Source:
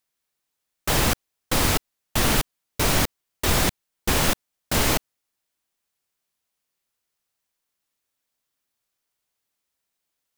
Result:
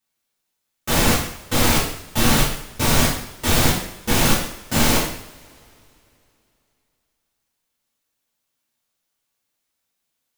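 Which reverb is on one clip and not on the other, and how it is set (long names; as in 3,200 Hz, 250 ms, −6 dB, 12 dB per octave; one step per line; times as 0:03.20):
coupled-rooms reverb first 0.63 s, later 3 s, from −25 dB, DRR −8.5 dB
level −5.5 dB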